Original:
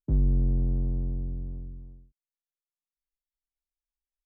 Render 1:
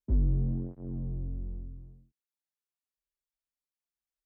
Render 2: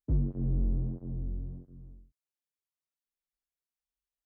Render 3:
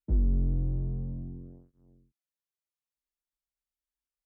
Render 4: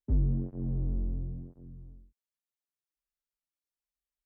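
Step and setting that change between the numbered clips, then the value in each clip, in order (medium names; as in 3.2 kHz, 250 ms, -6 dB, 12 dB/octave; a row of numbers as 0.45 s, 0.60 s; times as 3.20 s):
cancelling through-zero flanger, nulls at: 0.66 Hz, 1.5 Hz, 0.29 Hz, 0.97 Hz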